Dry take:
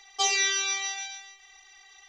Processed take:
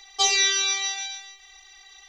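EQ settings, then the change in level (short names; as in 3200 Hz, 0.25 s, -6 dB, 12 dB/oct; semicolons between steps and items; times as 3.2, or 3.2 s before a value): low shelf 210 Hz +8 dB; bell 4000 Hz +6.5 dB 0.31 oct; high shelf 8800 Hz +6 dB; +1.5 dB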